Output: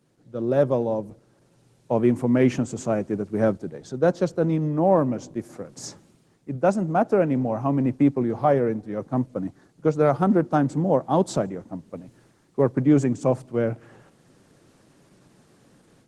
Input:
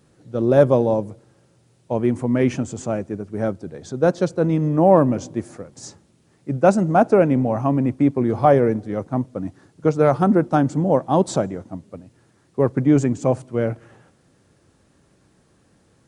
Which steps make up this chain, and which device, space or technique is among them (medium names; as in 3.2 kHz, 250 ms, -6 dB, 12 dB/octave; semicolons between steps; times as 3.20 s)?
5.75–6.55 s: high-pass 45 Hz 24 dB/octave; video call (high-pass 110 Hz 24 dB/octave; level rider gain up to 11 dB; trim -6.5 dB; Opus 16 kbps 48 kHz)